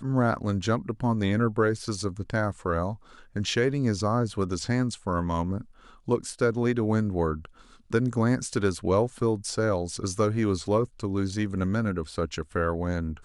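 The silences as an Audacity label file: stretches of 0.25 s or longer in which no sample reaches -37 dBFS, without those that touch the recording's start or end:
2.950000	3.360000	silence
5.620000	6.080000	silence
7.450000	7.910000	silence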